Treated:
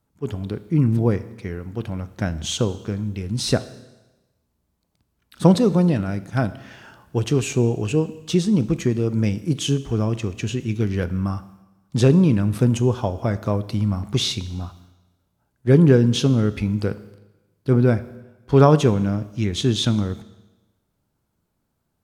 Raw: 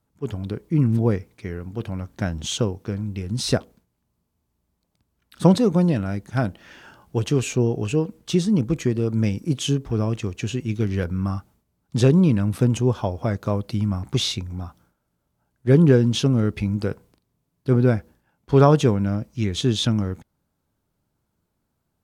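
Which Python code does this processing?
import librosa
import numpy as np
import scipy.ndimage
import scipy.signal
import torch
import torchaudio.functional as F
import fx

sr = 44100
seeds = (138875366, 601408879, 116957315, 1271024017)

y = fx.rev_schroeder(x, sr, rt60_s=1.1, comb_ms=26, drr_db=14.5)
y = y * librosa.db_to_amplitude(1.0)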